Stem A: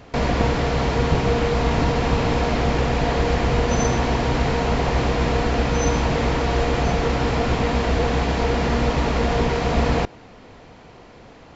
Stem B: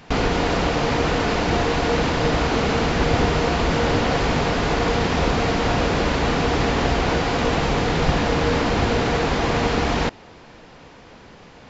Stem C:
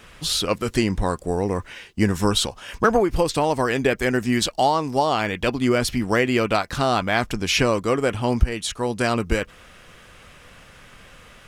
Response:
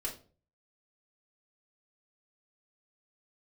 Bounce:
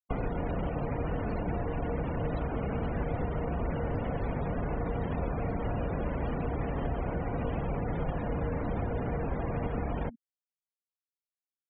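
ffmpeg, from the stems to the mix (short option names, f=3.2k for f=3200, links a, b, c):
-filter_complex "[1:a]bandreject=f=77.4:t=h:w=4,bandreject=f=154.8:t=h:w=4,bandreject=f=232.2:t=h:w=4,volume=-1.5dB[a];[2:a]acompressor=threshold=-20dB:ratio=6,aphaser=in_gain=1:out_gain=1:delay=4.6:decay=0.54:speed=2:type=triangular,volume=-18dB[b];[a][b]amix=inputs=2:normalize=0,afftfilt=real='re*gte(hypot(re,im),0.0794)':imag='im*gte(hypot(re,im),0.0794)':win_size=1024:overlap=0.75,acrossover=split=230|470[c][d][e];[c]acompressor=threshold=-31dB:ratio=4[f];[d]acompressor=threshold=-49dB:ratio=4[g];[e]acompressor=threshold=-44dB:ratio=4[h];[f][g][h]amix=inputs=3:normalize=0,equalizer=f=580:w=2.1:g=5.5"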